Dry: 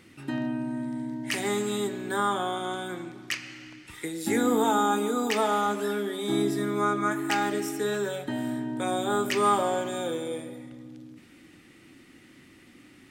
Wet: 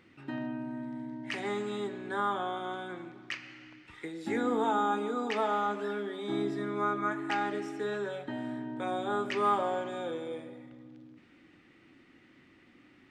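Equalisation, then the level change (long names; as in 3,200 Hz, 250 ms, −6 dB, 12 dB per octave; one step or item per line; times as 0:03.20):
head-to-tape spacing loss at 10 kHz 25 dB
low-shelf EQ 470 Hz −8 dB
0.0 dB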